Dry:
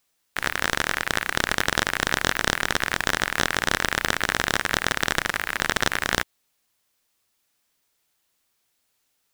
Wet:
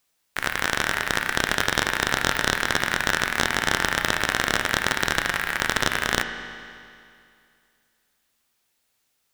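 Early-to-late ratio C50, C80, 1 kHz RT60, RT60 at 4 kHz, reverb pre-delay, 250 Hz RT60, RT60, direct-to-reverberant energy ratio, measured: 8.0 dB, 8.5 dB, 2.4 s, 2.3 s, 8 ms, 2.4 s, 2.4 s, 6.5 dB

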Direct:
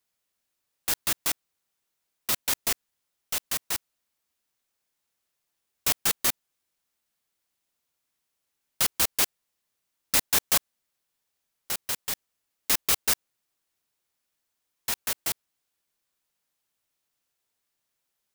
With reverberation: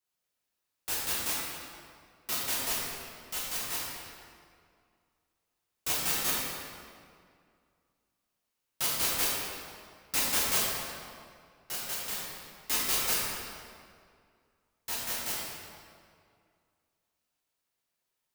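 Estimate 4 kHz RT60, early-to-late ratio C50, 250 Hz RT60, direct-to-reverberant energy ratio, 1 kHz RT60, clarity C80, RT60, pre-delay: 1.5 s, -2.0 dB, 2.4 s, -7.5 dB, 2.1 s, 0.0 dB, 2.2 s, 4 ms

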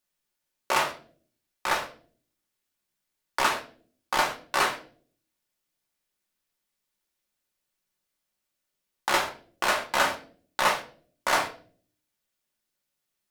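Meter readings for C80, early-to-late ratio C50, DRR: 16.0 dB, 11.5 dB, 1.0 dB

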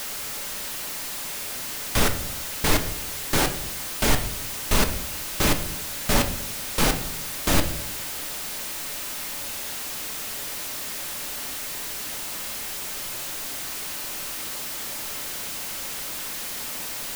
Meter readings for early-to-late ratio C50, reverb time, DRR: 11.5 dB, 0.70 s, 6.0 dB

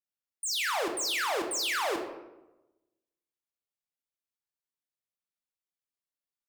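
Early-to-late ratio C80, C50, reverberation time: 9.0 dB, 6.5 dB, 1.0 s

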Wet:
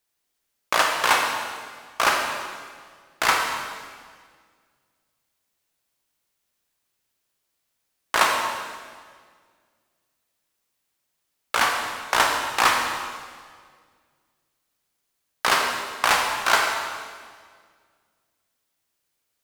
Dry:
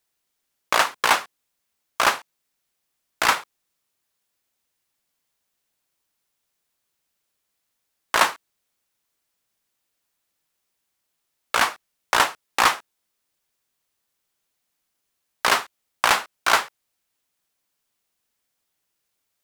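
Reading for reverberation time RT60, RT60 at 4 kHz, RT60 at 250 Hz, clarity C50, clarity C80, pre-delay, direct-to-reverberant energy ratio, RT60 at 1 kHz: 1.8 s, 1.6 s, 2.1 s, 2.5 dB, 4.0 dB, 23 ms, 1.0 dB, 1.7 s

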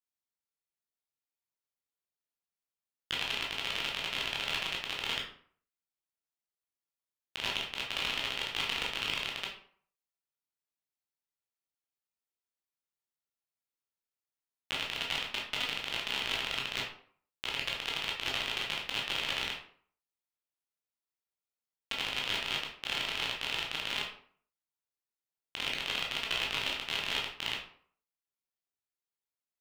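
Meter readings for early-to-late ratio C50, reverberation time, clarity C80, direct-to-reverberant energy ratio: 5.5 dB, 0.55 s, 9.5 dB, -2.5 dB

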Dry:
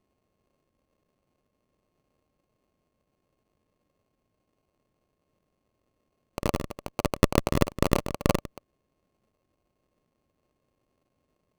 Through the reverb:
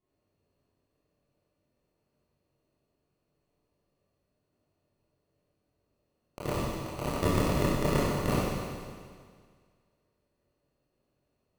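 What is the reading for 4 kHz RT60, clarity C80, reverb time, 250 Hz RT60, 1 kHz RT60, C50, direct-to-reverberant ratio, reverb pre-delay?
1.9 s, -0.5 dB, 1.9 s, 1.9 s, 1.9 s, -3.0 dB, -9.5 dB, 21 ms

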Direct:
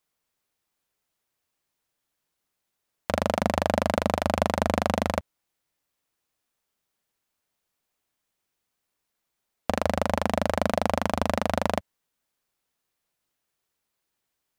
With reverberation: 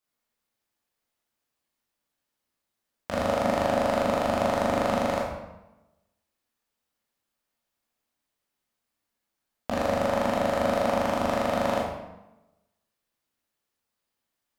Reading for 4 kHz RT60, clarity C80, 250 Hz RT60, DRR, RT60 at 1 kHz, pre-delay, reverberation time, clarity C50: 0.70 s, 4.0 dB, 1.1 s, -5.0 dB, 1.0 s, 14 ms, 1.0 s, 1.5 dB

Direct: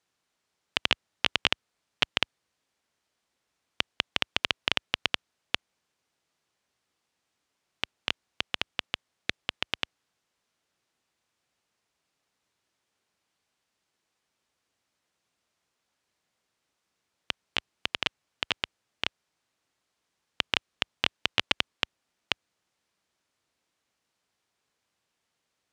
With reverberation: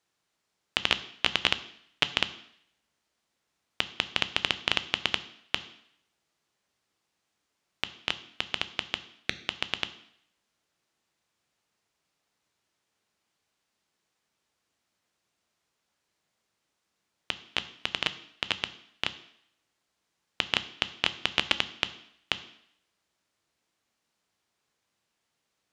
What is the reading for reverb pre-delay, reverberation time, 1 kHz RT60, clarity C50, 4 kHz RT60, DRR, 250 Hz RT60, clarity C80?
3 ms, 0.65 s, 0.70 s, 16.0 dB, 0.70 s, 12.0 dB, 0.65 s, 18.0 dB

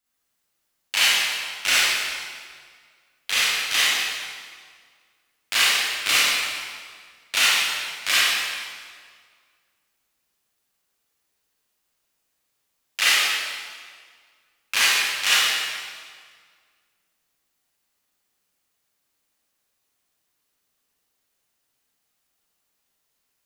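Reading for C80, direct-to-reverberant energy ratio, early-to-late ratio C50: -2.0 dB, -9.0 dB, -5.0 dB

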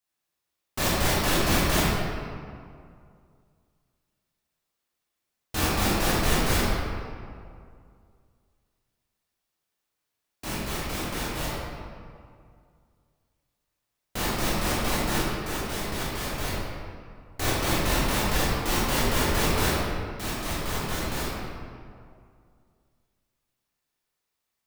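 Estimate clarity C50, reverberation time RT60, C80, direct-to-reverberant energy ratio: -3.5 dB, 2.2 s, -1.0 dB, -8.5 dB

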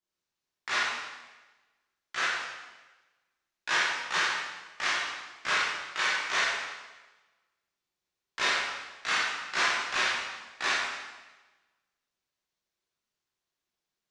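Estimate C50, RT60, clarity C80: -2.0 dB, 1.2 s, 1.5 dB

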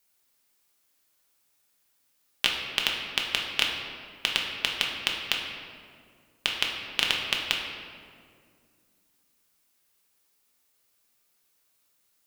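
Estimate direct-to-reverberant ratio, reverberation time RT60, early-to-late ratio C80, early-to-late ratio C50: -1.0 dB, 2.1 s, 4.0 dB, 2.5 dB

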